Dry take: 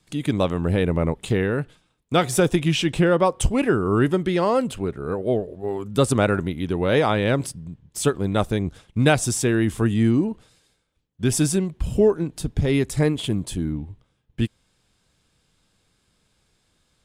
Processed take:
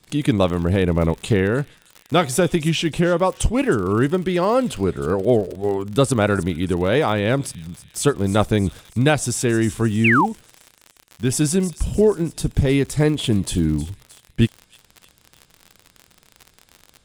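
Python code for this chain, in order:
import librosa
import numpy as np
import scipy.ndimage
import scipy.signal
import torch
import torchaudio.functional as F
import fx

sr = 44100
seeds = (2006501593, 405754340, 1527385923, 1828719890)

p1 = x + fx.echo_wet_highpass(x, sr, ms=312, feedback_pct=51, hz=4400.0, wet_db=-13, dry=0)
p2 = fx.rider(p1, sr, range_db=4, speed_s=0.5)
p3 = fx.dmg_crackle(p2, sr, seeds[0], per_s=69.0, level_db=-31.0)
p4 = fx.spec_paint(p3, sr, seeds[1], shape='fall', start_s=10.04, length_s=0.22, low_hz=740.0, high_hz=2900.0, level_db=-19.0)
y = p4 * librosa.db_to_amplitude(2.5)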